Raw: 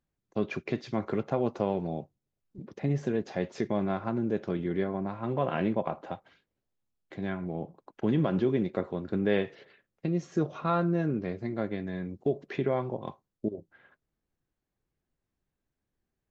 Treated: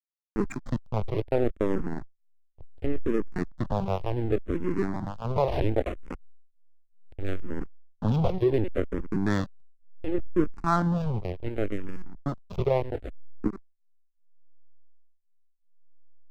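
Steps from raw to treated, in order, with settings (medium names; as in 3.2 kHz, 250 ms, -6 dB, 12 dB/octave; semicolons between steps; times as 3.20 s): in parallel at -9.5 dB: saturation -27 dBFS, distortion -9 dB; on the sum: LPC vocoder at 8 kHz pitch kept; hysteresis with a dead band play -26.5 dBFS; barber-pole phaser -0.69 Hz; trim +6 dB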